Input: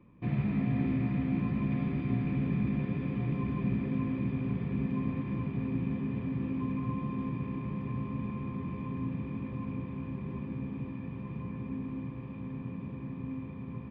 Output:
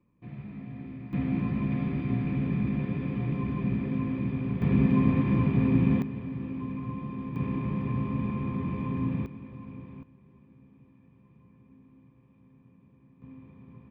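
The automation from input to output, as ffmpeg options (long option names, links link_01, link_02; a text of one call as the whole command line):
ffmpeg -i in.wav -af "asetnsamples=nb_out_samples=441:pad=0,asendcmd='1.13 volume volume 2dB;4.62 volume volume 9.5dB;6.02 volume volume -1.5dB;7.36 volume volume 5.5dB;9.26 volume volume -6dB;10.03 volume volume -19dB;13.22 volume volume -9.5dB',volume=-11dB" out.wav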